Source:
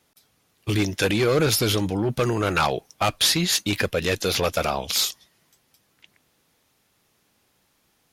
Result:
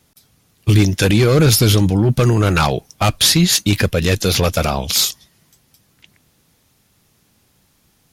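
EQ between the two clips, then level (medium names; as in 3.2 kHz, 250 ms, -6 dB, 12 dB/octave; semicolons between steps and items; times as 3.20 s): tone controls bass +10 dB, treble +4 dB; +4.0 dB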